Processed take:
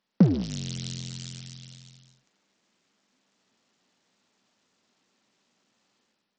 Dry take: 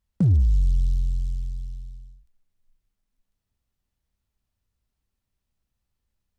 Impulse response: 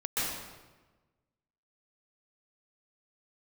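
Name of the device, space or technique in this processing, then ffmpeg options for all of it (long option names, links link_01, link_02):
Bluetooth headset: -af "highpass=frequency=210:width=0.5412,highpass=frequency=210:width=1.3066,dynaudnorm=framelen=100:gausssize=7:maxgain=8.5dB,aresample=16000,aresample=44100,volume=8.5dB" -ar 44100 -c:a sbc -b:a 64k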